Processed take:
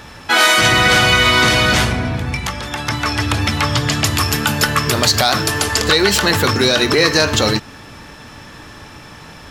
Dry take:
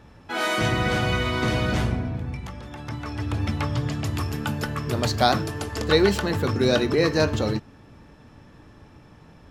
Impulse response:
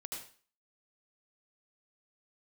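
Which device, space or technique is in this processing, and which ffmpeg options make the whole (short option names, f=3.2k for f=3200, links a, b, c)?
mastering chain: -af "equalizer=f=2.6k:t=o:w=0.77:g=-1.5,acompressor=threshold=-24dB:ratio=2.5,asoftclip=type=tanh:threshold=-14.5dB,tiltshelf=f=970:g=-7.5,asoftclip=type=hard:threshold=-13dB,alimiter=level_in=17dB:limit=-1dB:release=50:level=0:latency=1,volume=-1dB"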